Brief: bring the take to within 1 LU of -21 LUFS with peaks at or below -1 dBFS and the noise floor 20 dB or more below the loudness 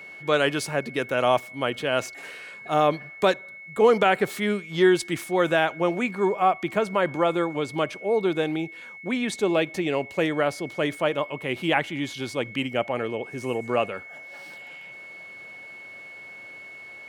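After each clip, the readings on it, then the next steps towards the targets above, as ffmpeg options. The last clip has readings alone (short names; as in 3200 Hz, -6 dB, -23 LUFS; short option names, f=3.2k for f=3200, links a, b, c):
steady tone 2200 Hz; tone level -40 dBFS; loudness -25.0 LUFS; peak -7.5 dBFS; loudness target -21.0 LUFS
-> -af "bandreject=f=2.2k:w=30"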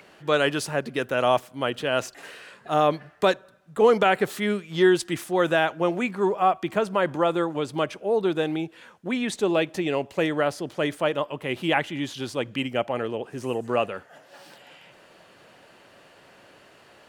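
steady tone none; loudness -25.0 LUFS; peak -7.5 dBFS; loudness target -21.0 LUFS
-> -af "volume=4dB"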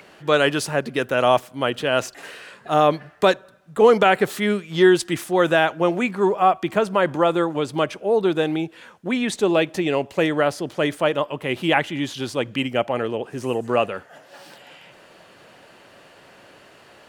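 loudness -21.0 LUFS; peak -3.5 dBFS; noise floor -50 dBFS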